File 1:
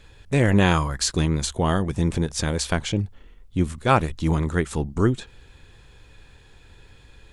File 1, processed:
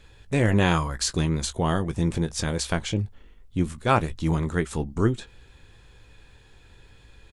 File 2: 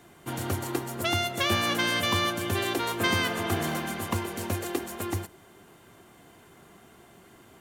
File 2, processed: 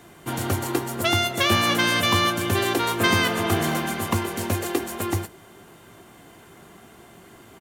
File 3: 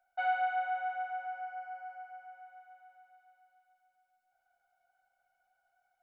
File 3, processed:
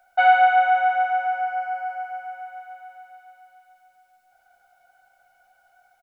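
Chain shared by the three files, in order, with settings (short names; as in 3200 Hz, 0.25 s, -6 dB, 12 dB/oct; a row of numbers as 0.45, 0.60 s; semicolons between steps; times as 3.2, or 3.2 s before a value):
doubler 18 ms -12.5 dB; normalise peaks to -6 dBFS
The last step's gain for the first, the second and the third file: -2.5, +5.5, +16.5 dB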